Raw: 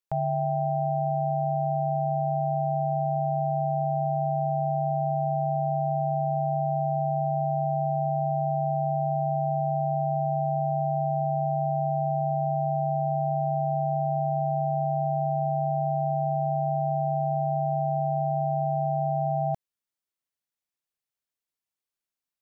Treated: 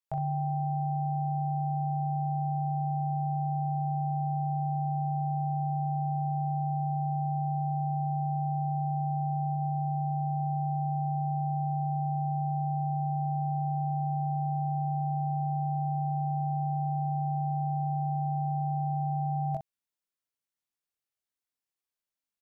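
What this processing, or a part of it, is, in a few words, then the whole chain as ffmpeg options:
slapback doubling: -filter_complex "[0:a]asplit=3[a][b][c];[b]adelay=22,volume=-3dB[d];[c]adelay=63,volume=-7.5dB[e];[a][d][e]amix=inputs=3:normalize=0,asettb=1/sr,asplit=3[f][g][h];[f]atrim=end=9.544[i];[g]atrim=start=9.54:end=10.4,asetpts=PTS-STARTPTS,afade=t=in:d=0.004:c=qsin,afade=t=out:st=0.856:d=0.004:c=qsin,bandreject=f=194.3:t=h:w=4,bandreject=f=388.6:t=h:w=4,bandreject=f=582.9:t=h:w=4,bandreject=f=777.2:t=h:w=4,bandreject=f=971.5:t=h:w=4,bandreject=f=1.1658k:t=h:w=4,bandreject=f=1.3601k:t=h:w=4,bandreject=f=1.5544k:t=h:w=4,bandreject=f=1.7487k:t=h:w=4,bandreject=f=1.943k:t=h:w=4,bandreject=f=2.1373k:t=h:w=4,bandreject=f=2.3316k:t=h:w=4,bandreject=f=2.5259k:t=h:w=4,bandreject=f=2.7202k:t=h:w=4,bandreject=f=2.9145k:t=h:w=4,bandreject=f=3.1088k:t=h:w=4,bandreject=f=3.3031k:t=h:w=4,bandreject=f=3.4974k:t=h:w=4,bandreject=f=3.6917k:t=h:w=4,bandreject=f=3.886k:t=h:w=4,bandreject=f=4.0803k:t=h:w=4,bandreject=f=4.2746k:t=h:w=4,bandreject=f=4.4689k:t=h:w=4,bandreject=f=4.6632k:t=h:w=4,bandreject=f=4.8575k:t=h:w=4,bandreject=f=5.0518k:t=h:w=4,bandreject=f=5.2461k:t=h:w=4,bandreject=f=5.4404k:t=h:w=4,bandreject=f=5.6347k:t=h:w=4,bandreject=f=5.829k:t=h:w=4,bandreject=f=6.0233k:t=h:w=4,bandreject=f=6.2176k:t=h:w=4,bandreject=f=6.4119k:t=h:w=4,bandreject=f=6.6062k:t=h:w=4,bandreject=f=6.8005k:t=h:w=4,bandreject=f=6.9948k:t=h:w=4,bandreject=f=7.1891k:t=h:w=4,bandreject=f=7.3834k:t=h:w=4,bandreject=f=7.5777k:t=h:w=4[j];[h]atrim=start=10.396[k];[i][j]acrossfade=d=0.004:c1=hsin:c2=qsin[l];[l][k]acrossfade=d=0.004:c1=qsin:c2=hsin,volume=-5dB"

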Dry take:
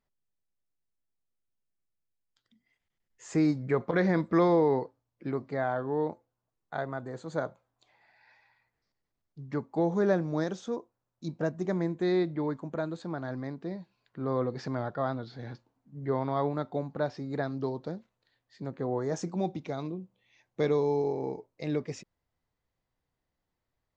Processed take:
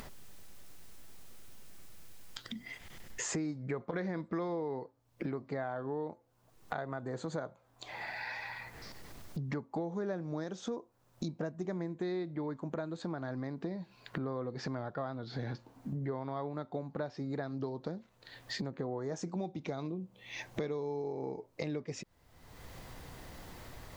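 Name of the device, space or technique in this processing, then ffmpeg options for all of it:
upward and downward compression: -af "acompressor=mode=upward:threshold=-31dB:ratio=2.5,acompressor=threshold=-41dB:ratio=6,volume=6dB"

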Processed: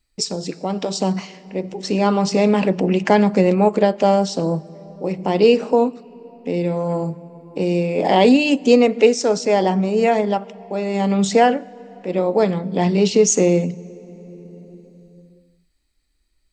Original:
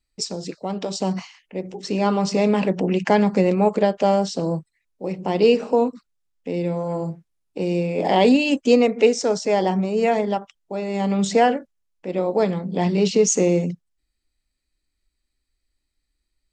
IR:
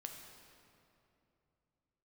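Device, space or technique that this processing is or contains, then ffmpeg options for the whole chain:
ducked reverb: -filter_complex "[0:a]asplit=3[a][b][c];[1:a]atrim=start_sample=2205[d];[b][d]afir=irnorm=-1:irlink=0[e];[c]apad=whole_len=728546[f];[e][f]sidechaincompress=threshold=-34dB:ratio=4:attack=33:release=892,volume=2dB[g];[a][g]amix=inputs=2:normalize=0,volume=2dB"

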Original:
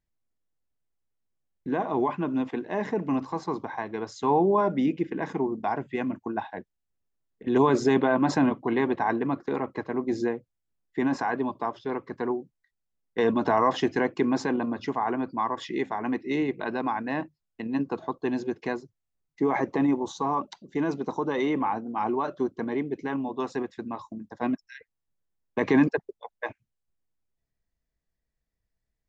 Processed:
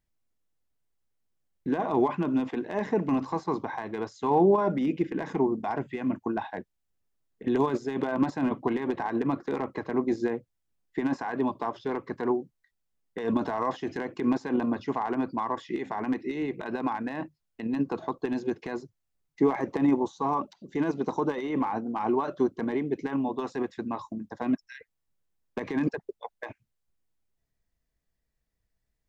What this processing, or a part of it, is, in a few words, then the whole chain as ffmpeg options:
de-esser from a sidechain: -filter_complex "[0:a]asplit=2[a][b];[b]highpass=4.6k,apad=whole_len=1282813[c];[a][c]sidechaincompress=threshold=-52dB:ratio=8:attack=0.51:release=68,volume=2.5dB"

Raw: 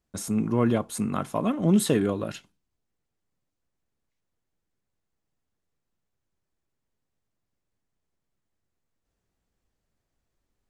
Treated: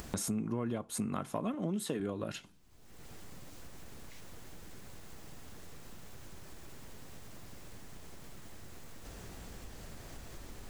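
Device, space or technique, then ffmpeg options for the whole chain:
upward and downward compression: -filter_complex "[0:a]acompressor=mode=upward:threshold=-32dB:ratio=2.5,acompressor=threshold=-40dB:ratio=6,asettb=1/sr,asplit=3[a][b][c];[a]atrim=end=1.544[d];[b]atrim=start=1.54:end=2,asetpts=PTS-STARTPTS,afade=t=in:d=0.004:c=qsin,afade=t=out:st=0.456:d=0.004:c=qsin,highpass=150[e];[c]atrim=start=1.996[f];[d][e]acrossfade=d=0.004:c1=hsin:c2=qsin[g];[g][f]acrossfade=d=0.004:c1=qsin:c2=hsin,volume=6.5dB"

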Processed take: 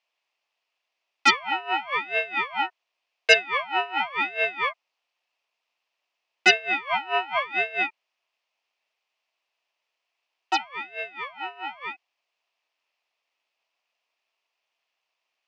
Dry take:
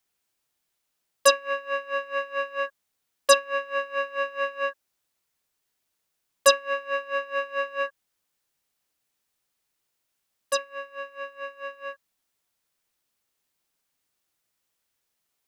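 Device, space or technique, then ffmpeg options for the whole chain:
voice changer toy: -af "aeval=exprs='val(0)*sin(2*PI*580*n/s+580*0.75/0.91*sin(2*PI*0.91*n/s))':c=same,highpass=590,equalizer=f=670:t=q:w=4:g=6,equalizer=f=1k:t=q:w=4:g=3,equalizer=f=1.5k:t=q:w=4:g=-6,equalizer=f=2.6k:t=q:w=4:g=8,equalizer=f=3.9k:t=q:w=4:g=-4,lowpass=f=4.9k:w=0.5412,lowpass=f=4.9k:w=1.3066,volume=5.5dB"

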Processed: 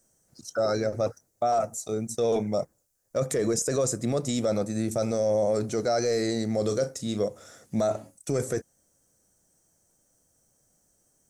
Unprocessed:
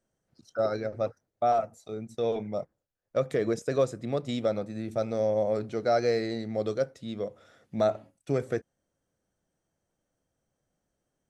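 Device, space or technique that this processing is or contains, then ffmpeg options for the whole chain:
over-bright horn tweeter: -filter_complex "[0:a]highshelf=f=4.8k:t=q:w=1.5:g=12.5,alimiter=level_in=0.5dB:limit=-24dB:level=0:latency=1:release=10,volume=-0.5dB,asettb=1/sr,asplit=3[a][b][c];[a]atrim=end=6.584[d];[b]atrim=start=6.58:end=7.23,asetpts=PTS-STARTPTS,afade=t=in:d=0.004:c=qsin,afade=t=out:st=0.646:d=0.004:c=qsin,asplit=2[e][f];[f]adelay=38,volume=-11dB[g];[e][g]amix=inputs=2:normalize=0,atrim=end_sample=28665[h];[c]atrim=start=7.226[i];[d][h]acrossfade=d=0.004:c1=hsin:c2=qsin[j];[j][i]acrossfade=d=0.004:c1=qsin:c2=hsin,volume=7dB"

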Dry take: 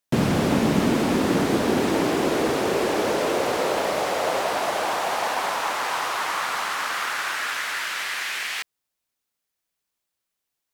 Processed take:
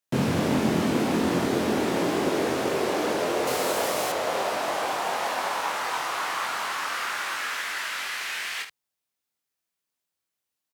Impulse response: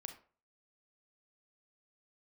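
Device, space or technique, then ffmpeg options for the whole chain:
slapback doubling: -filter_complex "[0:a]highpass=65,asplit=3[a][b][c];[b]adelay=23,volume=-3dB[d];[c]adelay=73,volume=-8.5dB[e];[a][d][e]amix=inputs=3:normalize=0,asettb=1/sr,asplit=3[f][g][h];[f]atrim=end=3.474[i];[g]atrim=start=3.47:end=4.12,asetpts=PTS-STARTPTS,afade=t=in:d=0.004:c=qsin,afade=t=out:st=0.646:d=0.004:c=qsin,highshelf=f=6.3k:g=12[j];[h]atrim=start=4.116[k];[i][j]acrossfade=d=0.004:c1=hsin:c2=qsin[l];[l][k]acrossfade=d=0.004:c1=qsin:c2=hsin,volume=-5dB"

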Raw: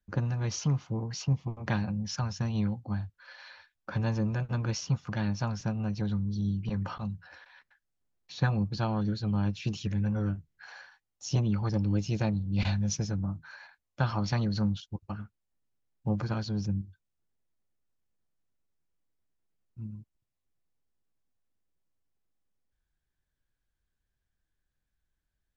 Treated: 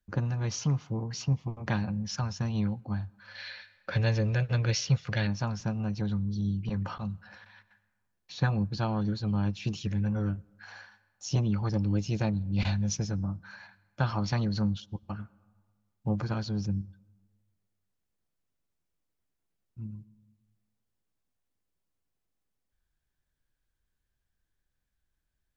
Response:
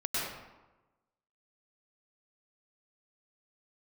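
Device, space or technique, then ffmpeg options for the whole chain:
ducked reverb: -filter_complex "[0:a]asettb=1/sr,asplit=3[a][b][c];[a]atrim=end=3.354[d];[b]atrim=start=3.35:end=5.27,asetpts=PTS-STARTPTS,afade=t=in:d=0.004:c=qsin,afade=t=out:st=1.916:d=0.004:c=qsin,equalizer=f=125:t=o:w=1:g=5,equalizer=f=250:t=o:w=1:g=-7,equalizer=f=500:t=o:w=1:g=8,equalizer=f=1k:t=o:w=1:g=-7,equalizer=f=2k:t=o:w=1:g=9,equalizer=f=4k:t=o:w=1:g=8[e];[c]atrim=start=5.266[f];[d][e]acrossfade=d=0.004:c1=hsin:c2=qsin[g];[g][f]acrossfade=d=0.004:c1=qsin:c2=hsin,asplit=3[h][i][j];[1:a]atrim=start_sample=2205[k];[i][k]afir=irnorm=-1:irlink=0[l];[j]apad=whole_len=1127554[m];[l][m]sidechaincompress=threshold=-42dB:ratio=20:attack=10:release=986,volume=-18.5dB[n];[h][n]amix=inputs=2:normalize=0"

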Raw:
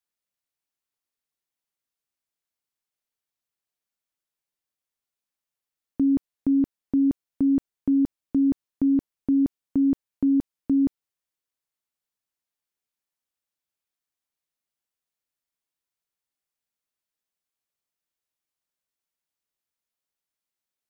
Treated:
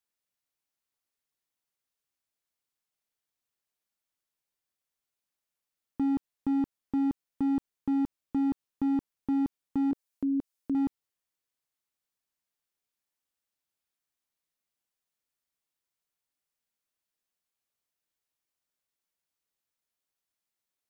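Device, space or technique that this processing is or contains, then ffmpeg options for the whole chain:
clipper into limiter: -filter_complex "[0:a]asettb=1/sr,asplit=3[a][b][c];[a]atrim=end=9.914[d];[b]atrim=start=9.91:end=10.75,asetpts=PTS-STARTPTS,afade=t=in:d=0.004:c=qsin,afade=t=out:st=0.836:d=0.004:c=qsin,bass=f=250:g=-7,treble=f=4k:g=5[e];[c]atrim=start=10.746[f];[d][e]acrossfade=d=0.004:c1=hsin:c2=qsin[g];[g][f]acrossfade=d=0.004:c1=qsin:c2=hsin,asoftclip=type=hard:threshold=-19dB,alimiter=limit=-24dB:level=0:latency=1:release=80"

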